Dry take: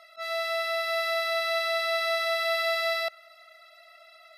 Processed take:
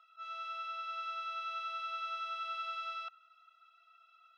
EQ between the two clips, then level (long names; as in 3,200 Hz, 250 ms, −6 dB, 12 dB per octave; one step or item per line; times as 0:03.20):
high-pass filter 1,200 Hz 12 dB per octave
head-to-tape spacing loss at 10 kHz 33 dB
phaser with its sweep stopped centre 3,000 Hz, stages 8
+1.0 dB